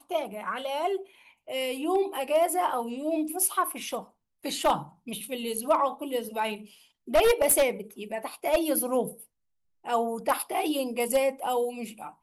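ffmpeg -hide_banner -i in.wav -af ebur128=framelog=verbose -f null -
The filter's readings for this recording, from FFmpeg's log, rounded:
Integrated loudness:
  I:         -27.8 LUFS
  Threshold: -38.3 LUFS
Loudness range:
  LRA:         3.2 LU
  Threshold: -48.1 LUFS
  LRA low:   -29.8 LUFS
  LRA high:  -26.6 LUFS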